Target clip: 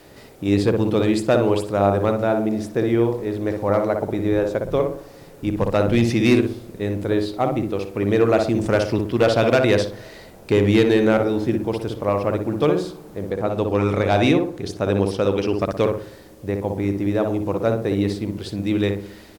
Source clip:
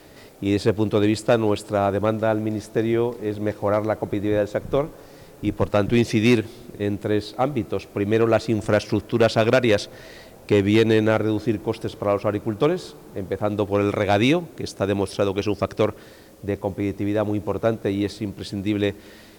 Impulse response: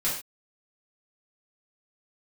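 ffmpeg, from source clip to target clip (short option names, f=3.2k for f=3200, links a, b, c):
-filter_complex "[0:a]asettb=1/sr,asplit=3[a][b][c];[a]atrim=end=13.304[d];[b]atrim=start=13.3:end=15.61,asetpts=PTS-STARTPTS,afade=t=in:d=0.004:c=qsin,afade=t=out:st=2.306:d=0.004:c=qsin,highshelf=f=8k:g=-5[e];[c]atrim=start=15.606[f];[d][e]acrossfade=d=0.004:c1=hsin:c2=qsin[g];[g][f]acrossfade=d=0.004:c1=qsin:c2=hsin,asplit=2[h][i];[i]adelay=60,lowpass=f=1.2k:p=1,volume=-3dB,asplit=2[j][k];[k]adelay=60,lowpass=f=1.2k:p=1,volume=0.45,asplit=2[l][m];[m]adelay=60,lowpass=f=1.2k:p=1,volume=0.45,asplit=2[n][o];[o]adelay=60,lowpass=f=1.2k:p=1,volume=0.45,asplit=2[p][q];[q]adelay=60,lowpass=f=1.2k:p=1,volume=0.45,asplit=2[r][s];[s]adelay=60,lowpass=f=1.2k:p=1,volume=0.45[t];[h][j][l][n][p][r][t]amix=inputs=7:normalize=0"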